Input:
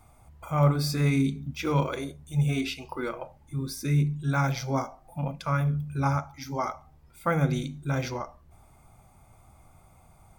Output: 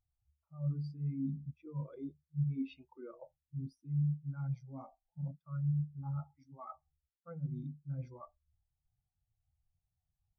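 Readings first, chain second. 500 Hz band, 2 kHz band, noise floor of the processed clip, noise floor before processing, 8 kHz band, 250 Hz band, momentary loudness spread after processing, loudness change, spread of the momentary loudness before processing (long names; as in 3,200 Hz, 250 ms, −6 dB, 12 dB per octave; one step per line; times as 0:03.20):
−22.0 dB, below −30 dB, below −85 dBFS, −57 dBFS, below −35 dB, −11.5 dB, 17 LU, −11.0 dB, 11 LU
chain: reversed playback
downward compressor 8 to 1, threshold −37 dBFS, peak gain reduction 20 dB
reversed playback
every bin expanded away from the loudest bin 2.5 to 1
level +1 dB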